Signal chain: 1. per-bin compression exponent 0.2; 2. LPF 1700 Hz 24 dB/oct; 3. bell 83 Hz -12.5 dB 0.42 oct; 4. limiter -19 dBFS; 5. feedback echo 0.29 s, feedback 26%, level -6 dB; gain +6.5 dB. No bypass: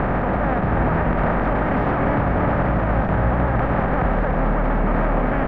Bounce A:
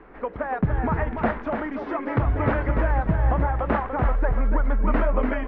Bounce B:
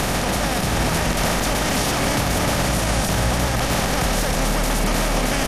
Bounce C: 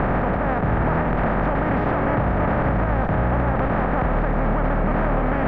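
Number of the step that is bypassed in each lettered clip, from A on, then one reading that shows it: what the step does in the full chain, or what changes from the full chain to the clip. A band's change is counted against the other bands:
1, crest factor change +2.5 dB; 2, 2 kHz band +4.5 dB; 5, crest factor change -2.5 dB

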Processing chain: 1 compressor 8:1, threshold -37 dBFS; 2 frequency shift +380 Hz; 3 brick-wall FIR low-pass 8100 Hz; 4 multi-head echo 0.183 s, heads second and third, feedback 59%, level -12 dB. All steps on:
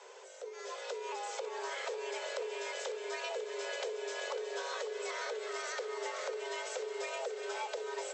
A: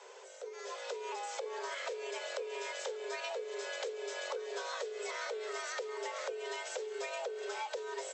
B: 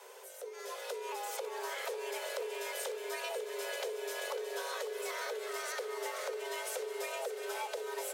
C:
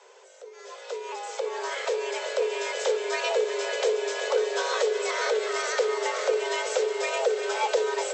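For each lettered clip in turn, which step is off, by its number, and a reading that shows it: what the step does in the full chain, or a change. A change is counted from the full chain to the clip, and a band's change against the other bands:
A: 4, echo-to-direct -7.5 dB to none; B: 3, 8 kHz band +2.5 dB; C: 1, mean gain reduction 9.5 dB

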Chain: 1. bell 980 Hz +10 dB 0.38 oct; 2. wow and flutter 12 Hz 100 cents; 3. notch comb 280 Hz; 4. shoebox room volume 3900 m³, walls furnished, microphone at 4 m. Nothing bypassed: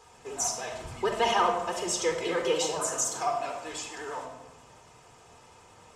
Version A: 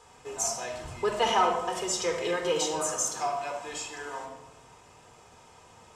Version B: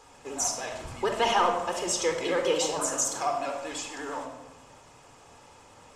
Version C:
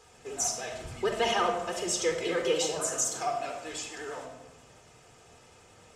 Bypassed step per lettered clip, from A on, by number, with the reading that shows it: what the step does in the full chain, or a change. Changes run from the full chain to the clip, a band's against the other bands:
2, momentary loudness spread change +1 LU; 3, loudness change +1.0 LU; 1, 1 kHz band -3.5 dB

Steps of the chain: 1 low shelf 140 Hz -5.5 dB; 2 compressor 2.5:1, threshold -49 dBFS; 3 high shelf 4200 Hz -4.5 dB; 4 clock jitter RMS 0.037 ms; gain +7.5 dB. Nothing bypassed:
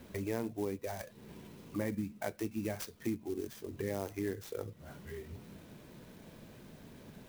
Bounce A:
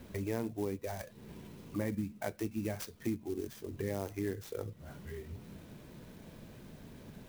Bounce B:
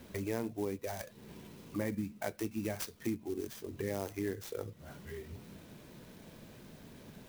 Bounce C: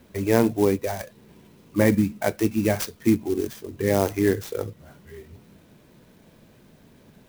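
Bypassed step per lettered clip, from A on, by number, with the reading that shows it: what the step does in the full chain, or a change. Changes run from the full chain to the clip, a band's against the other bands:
1, 125 Hz band +3.0 dB; 3, 8 kHz band +2.0 dB; 2, mean gain reduction 9.0 dB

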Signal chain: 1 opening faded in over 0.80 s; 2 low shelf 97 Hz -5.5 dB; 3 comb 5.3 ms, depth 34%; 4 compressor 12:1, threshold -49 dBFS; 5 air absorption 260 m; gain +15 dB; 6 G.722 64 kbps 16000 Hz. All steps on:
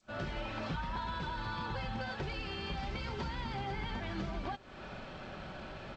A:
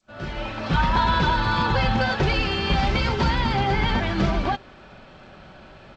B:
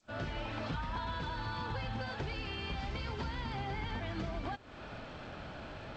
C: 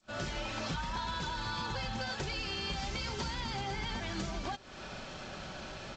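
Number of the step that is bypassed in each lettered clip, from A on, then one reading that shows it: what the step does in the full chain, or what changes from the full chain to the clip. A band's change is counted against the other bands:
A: 4, momentary loudness spread change +2 LU; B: 3, 125 Hz band +1.5 dB; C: 5, 4 kHz band +6.0 dB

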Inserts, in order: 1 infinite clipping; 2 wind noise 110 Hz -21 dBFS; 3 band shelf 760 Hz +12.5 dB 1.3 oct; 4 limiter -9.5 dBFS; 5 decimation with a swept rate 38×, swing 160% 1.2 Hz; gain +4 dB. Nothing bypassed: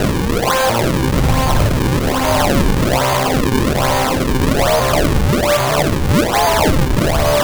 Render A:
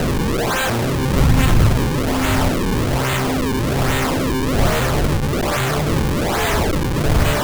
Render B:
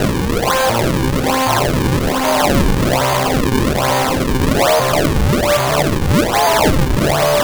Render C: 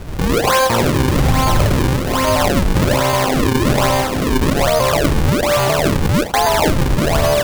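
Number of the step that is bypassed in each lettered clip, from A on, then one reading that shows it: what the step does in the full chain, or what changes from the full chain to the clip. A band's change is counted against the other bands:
3, 125 Hz band +3.0 dB; 2, 125 Hz band -1.5 dB; 1, distortion -2 dB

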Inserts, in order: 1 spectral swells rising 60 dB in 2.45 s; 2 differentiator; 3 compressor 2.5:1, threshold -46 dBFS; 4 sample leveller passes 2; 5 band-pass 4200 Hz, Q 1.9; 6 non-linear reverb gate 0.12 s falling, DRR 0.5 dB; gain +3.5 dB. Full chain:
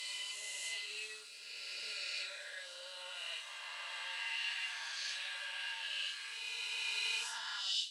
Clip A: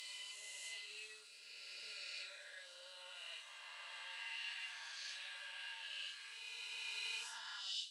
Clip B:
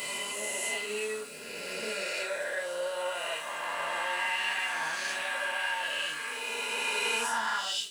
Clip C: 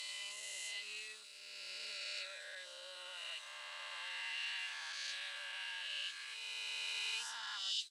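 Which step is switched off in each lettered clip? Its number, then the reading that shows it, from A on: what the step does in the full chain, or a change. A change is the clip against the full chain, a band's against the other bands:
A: 4, loudness change -7.5 LU; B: 5, 500 Hz band +14.0 dB; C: 6, loudness change -3.0 LU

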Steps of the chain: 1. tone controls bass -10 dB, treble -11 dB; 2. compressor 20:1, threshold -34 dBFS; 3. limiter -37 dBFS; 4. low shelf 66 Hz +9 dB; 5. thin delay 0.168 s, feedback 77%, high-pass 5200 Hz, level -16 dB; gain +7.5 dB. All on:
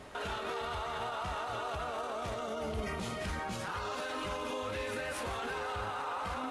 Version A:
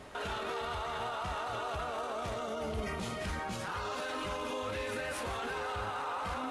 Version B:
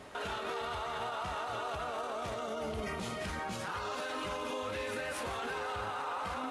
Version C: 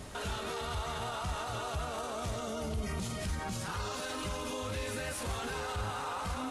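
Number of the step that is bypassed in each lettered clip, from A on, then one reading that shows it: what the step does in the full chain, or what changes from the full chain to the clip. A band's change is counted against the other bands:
2, mean gain reduction 5.0 dB; 4, 125 Hz band -3.0 dB; 1, 8 kHz band +6.5 dB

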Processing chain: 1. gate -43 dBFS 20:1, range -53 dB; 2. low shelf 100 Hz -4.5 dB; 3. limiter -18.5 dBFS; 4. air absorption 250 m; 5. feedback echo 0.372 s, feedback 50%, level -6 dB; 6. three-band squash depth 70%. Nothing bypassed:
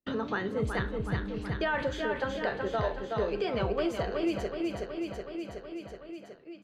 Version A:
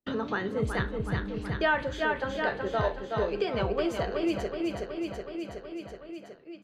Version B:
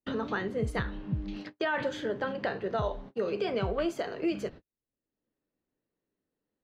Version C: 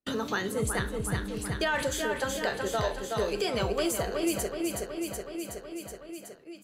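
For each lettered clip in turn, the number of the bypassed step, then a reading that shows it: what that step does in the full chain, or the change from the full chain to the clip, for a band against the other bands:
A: 3, 2 kHz band +2.0 dB; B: 5, momentary loudness spread change -7 LU; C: 4, 4 kHz band +6.0 dB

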